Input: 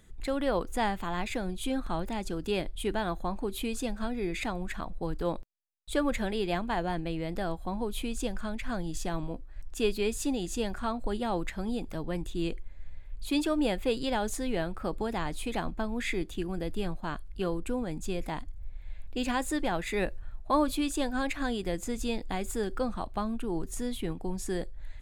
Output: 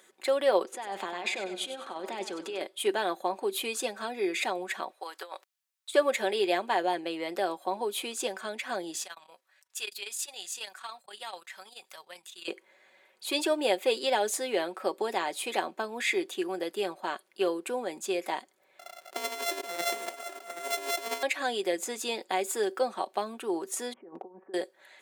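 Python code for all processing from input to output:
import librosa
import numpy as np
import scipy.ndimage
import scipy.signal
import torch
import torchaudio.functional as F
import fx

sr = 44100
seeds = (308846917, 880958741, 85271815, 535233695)

y = fx.chain(x, sr, fx.over_compress(threshold_db=-36.0, ratio=-1.0),
    fx.air_absorb(metres=52.0),
    fx.echo_feedback(ms=97, feedback_pct=41, wet_db=-11.0), at=(0.63, 2.61))
y = fx.chain(y, sr, fx.highpass(hz=990.0, slope=12),
    fx.over_compress(threshold_db=-44.0, ratio=-0.5), at=(4.9, 5.94))
y = fx.chain(y, sr, fx.tone_stack(knobs='10-0-10'),
    fx.transformer_sat(knee_hz=100.0), at=(9.04, 12.48))
y = fx.chain(y, sr, fx.sample_sort(block=64),
    fx.over_compress(threshold_db=-34.0, ratio=-0.5),
    fx.echo_single(ms=778, db=-11.0), at=(18.79, 21.23))
y = fx.chain(y, sr, fx.over_compress(threshold_db=-38.0, ratio=-0.5),
    fx.gaussian_blur(sigma=6.9),
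    fx.clip_hard(threshold_db=-27.0), at=(23.93, 24.54))
y = scipy.signal.sosfilt(scipy.signal.butter(4, 370.0, 'highpass', fs=sr, output='sos'), y)
y = y + 0.46 * np.pad(y, (int(5.3 * sr / 1000.0), 0))[:len(y)]
y = fx.dynamic_eq(y, sr, hz=1300.0, q=2.2, threshold_db=-48.0, ratio=4.0, max_db=-5)
y = y * 10.0 ** (5.0 / 20.0)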